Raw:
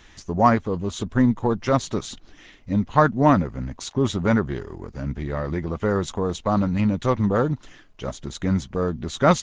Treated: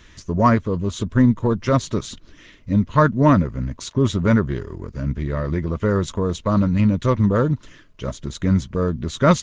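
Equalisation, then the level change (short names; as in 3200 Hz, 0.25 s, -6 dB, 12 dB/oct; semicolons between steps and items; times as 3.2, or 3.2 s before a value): Butterworth band-stop 780 Hz, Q 4; bell 95 Hz +5 dB 2.2 oct; +1.0 dB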